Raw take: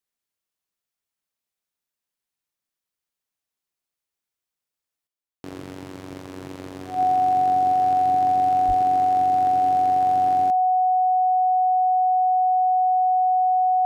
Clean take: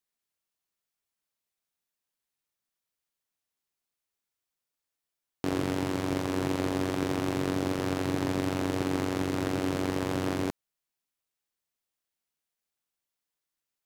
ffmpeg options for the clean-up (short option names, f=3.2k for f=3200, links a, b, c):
-filter_complex "[0:a]bandreject=f=740:w=30,asplit=3[a][b][c];[a]afade=t=out:st=8.67:d=0.02[d];[b]highpass=f=140:w=0.5412,highpass=f=140:w=1.3066,afade=t=in:st=8.67:d=0.02,afade=t=out:st=8.79:d=0.02[e];[c]afade=t=in:st=8.79:d=0.02[f];[d][e][f]amix=inputs=3:normalize=0,asetnsamples=n=441:p=0,asendcmd='5.07 volume volume 7.5dB',volume=0dB"